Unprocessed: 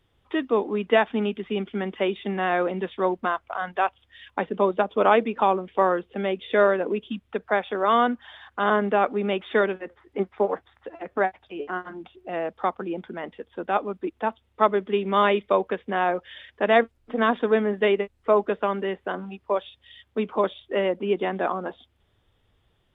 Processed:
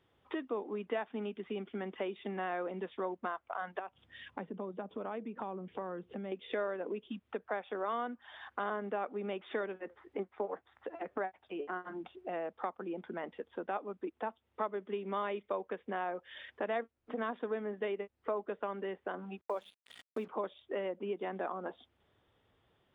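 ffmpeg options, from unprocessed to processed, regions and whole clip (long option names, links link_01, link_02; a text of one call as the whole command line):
ffmpeg -i in.wav -filter_complex "[0:a]asettb=1/sr,asplit=3[link_01][link_02][link_03];[link_01]atrim=end=3.794[link_04];[link_02]atrim=start=3.79:end=6.32,asetpts=PTS-STARTPTS,afade=type=in:duration=0.004:curve=qsin,afade=type=out:start_time=2.526:duration=0.004:curve=qsin,equalizer=frequency=150:width_type=o:width=1.8:gain=14,acompressor=threshold=-42dB:ratio=2:attack=3.2:release=140:knee=1:detection=peak[link_05];[link_03]atrim=start=6.316[link_06];[link_04][link_05]acrossfade=duration=0.004:curve1=hsin:curve2=qsin[link_07];[link_07][link_06]acrossfade=duration=0.004:curve1=qsin:curve2=hsin,asettb=1/sr,asplit=3[link_08][link_09][link_10];[link_08]atrim=end=19.414[link_11];[link_09]atrim=start=19.41:end=20.28,asetpts=PTS-STARTPTS,afade=type=in:duration=0.004:curve=qsin,afade=type=out:start_time=0.866:duration=0.004:curve=qsin,bandreject=frequency=50:width_type=h:width=6,bandreject=frequency=100:width_type=h:width=6,bandreject=frequency=150:width_type=h:width=6,bandreject=frequency=200:width_type=h:width=6,acrusher=bits=6:mix=0:aa=0.5[link_12];[link_10]atrim=start=20.276[link_13];[link_11][link_12]acrossfade=duration=0.004:curve1=hsin:curve2=qsin[link_14];[link_14][link_13]acrossfade=duration=0.004:curve1=qsin:curve2=hsin,highshelf=frequency=3400:gain=-11.5,acompressor=threshold=-37dB:ratio=3,highpass=frequency=240:poles=1" out.wav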